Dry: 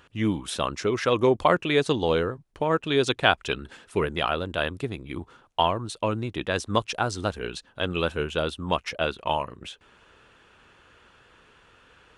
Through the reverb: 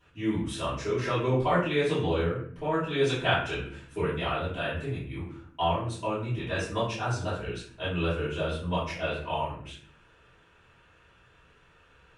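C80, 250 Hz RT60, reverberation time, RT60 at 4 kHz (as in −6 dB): 7.0 dB, 0.85 s, 0.55 s, 0.40 s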